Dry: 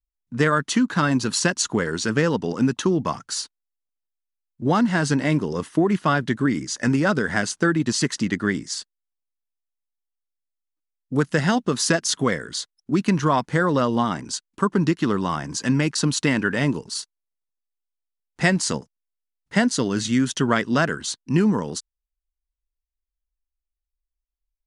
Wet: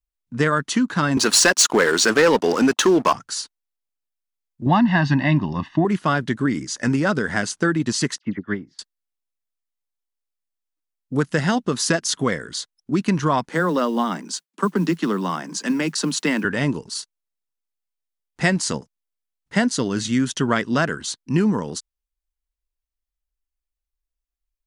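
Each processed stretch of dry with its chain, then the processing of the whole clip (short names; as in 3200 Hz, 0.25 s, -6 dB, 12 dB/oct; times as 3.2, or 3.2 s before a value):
1.17–3.13 HPF 380 Hz + sample leveller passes 3
4.66–5.85 LPF 4100 Hz 24 dB/oct + comb 1.1 ms, depth 99%
8.18–8.79 air absorption 320 m + dispersion lows, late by 58 ms, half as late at 2000 Hz + upward expander 2.5:1, over -32 dBFS
13.49–16.45 steep high-pass 160 Hz 96 dB/oct + modulation noise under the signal 33 dB
whole clip: dry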